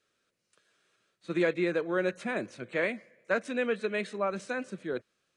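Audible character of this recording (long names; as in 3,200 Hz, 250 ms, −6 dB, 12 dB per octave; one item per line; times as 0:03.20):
background noise floor −79 dBFS
spectral slope −4.0 dB per octave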